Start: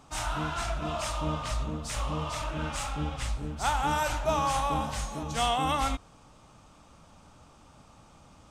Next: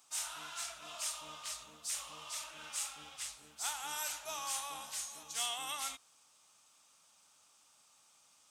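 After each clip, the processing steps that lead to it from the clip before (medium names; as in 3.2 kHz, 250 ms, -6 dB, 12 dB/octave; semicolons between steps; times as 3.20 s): differentiator; trim +1 dB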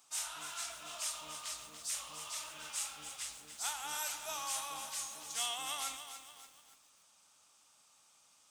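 bit-crushed delay 288 ms, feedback 55%, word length 9-bit, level -9 dB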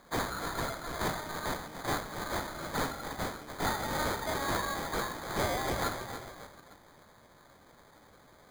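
phaser 0.54 Hz, delay 1.9 ms, feedback 36%; sample-and-hold 16×; saturation -31 dBFS, distortion -18 dB; trim +8 dB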